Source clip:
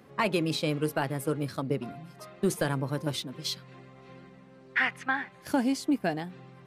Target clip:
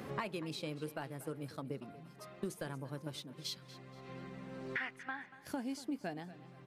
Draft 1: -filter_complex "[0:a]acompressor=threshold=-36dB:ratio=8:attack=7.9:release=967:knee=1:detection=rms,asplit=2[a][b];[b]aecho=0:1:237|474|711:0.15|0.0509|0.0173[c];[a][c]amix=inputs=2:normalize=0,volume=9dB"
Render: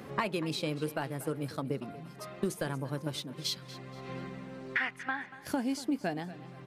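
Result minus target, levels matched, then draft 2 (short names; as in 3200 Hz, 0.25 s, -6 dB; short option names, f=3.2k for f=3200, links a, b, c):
compressor: peak gain reduction -8 dB
-filter_complex "[0:a]acompressor=threshold=-45dB:ratio=8:attack=7.9:release=967:knee=1:detection=rms,asplit=2[a][b];[b]aecho=0:1:237|474|711:0.15|0.0509|0.0173[c];[a][c]amix=inputs=2:normalize=0,volume=9dB"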